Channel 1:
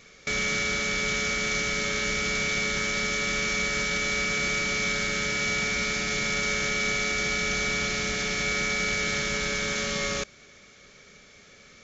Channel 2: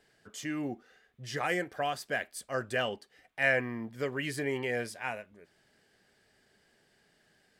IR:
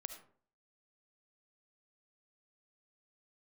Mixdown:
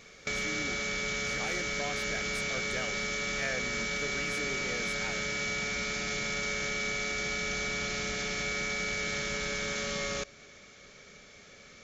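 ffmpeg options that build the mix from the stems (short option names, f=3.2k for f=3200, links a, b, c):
-filter_complex "[0:a]equalizer=f=660:w=1.5:g=2.5,volume=-2.5dB,asplit=2[a][b];[b]volume=-11dB[c];[1:a]acontrast=86,volume=-9.5dB[d];[2:a]atrim=start_sample=2205[e];[c][e]afir=irnorm=-1:irlink=0[f];[a][d][f]amix=inputs=3:normalize=0,acompressor=threshold=-34dB:ratio=2"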